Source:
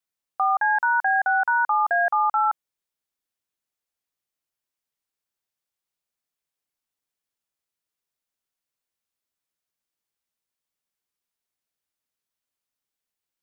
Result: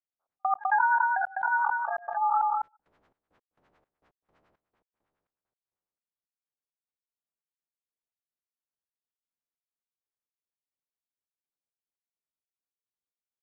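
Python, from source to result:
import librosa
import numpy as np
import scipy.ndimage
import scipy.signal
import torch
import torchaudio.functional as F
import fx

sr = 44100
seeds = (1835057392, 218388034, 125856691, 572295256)

p1 = fx.spec_steps(x, sr, hold_ms=200)
p2 = fx.noise_reduce_blind(p1, sr, reduce_db=9)
p3 = fx.filter_lfo_lowpass(p2, sr, shape='sine', hz=9.9, low_hz=550.0, high_hz=1600.0, q=1.0)
p4 = fx.step_gate(p3, sr, bpm=168, pattern='xxx..x..', floor_db=-60.0, edge_ms=4.5)
p5 = p4 + fx.echo_single(p4, sr, ms=203, db=-19.5, dry=0)
y = fx.sustainer(p5, sr, db_per_s=22.0)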